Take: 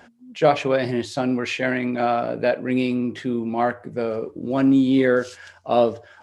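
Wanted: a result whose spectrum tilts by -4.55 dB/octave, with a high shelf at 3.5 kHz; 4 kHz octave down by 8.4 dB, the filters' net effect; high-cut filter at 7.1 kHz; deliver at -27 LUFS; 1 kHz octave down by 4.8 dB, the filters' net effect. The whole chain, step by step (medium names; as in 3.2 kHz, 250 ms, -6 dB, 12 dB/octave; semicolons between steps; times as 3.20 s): low-pass 7.1 kHz; peaking EQ 1 kHz -7.5 dB; treble shelf 3.5 kHz -9 dB; peaking EQ 4 kHz -4.5 dB; trim -3.5 dB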